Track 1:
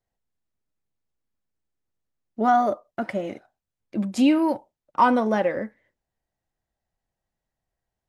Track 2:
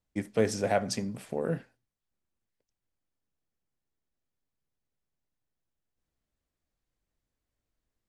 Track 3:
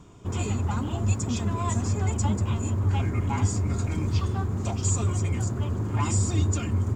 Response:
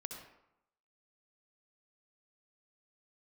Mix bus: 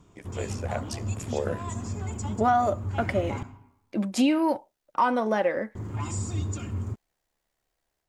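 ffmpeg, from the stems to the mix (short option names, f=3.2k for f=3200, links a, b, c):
-filter_complex "[0:a]equalizer=f=120:w=0.5:g=-6.5,volume=3dB[a];[1:a]highpass=410,dynaudnorm=f=800:g=3:m=15.5dB,tremolo=f=70:d=0.919,volume=-4dB[b];[2:a]volume=-10dB,asplit=3[c][d][e];[c]atrim=end=3.43,asetpts=PTS-STARTPTS,afade=t=out:st=3.426:d=0.004:c=hsin[f];[d]atrim=start=3.43:end=5.75,asetpts=PTS-STARTPTS,volume=0[g];[e]atrim=start=5.75,asetpts=PTS-STARTPTS,afade=t=in:d=0.004:c=hsin[h];[f][g][h]concat=n=3:v=0:a=1,asplit=2[i][j];[j]volume=-3dB[k];[3:a]atrim=start_sample=2205[l];[k][l]afir=irnorm=-1:irlink=0[m];[a][b][i][m]amix=inputs=4:normalize=0,alimiter=limit=-13.5dB:level=0:latency=1:release=484"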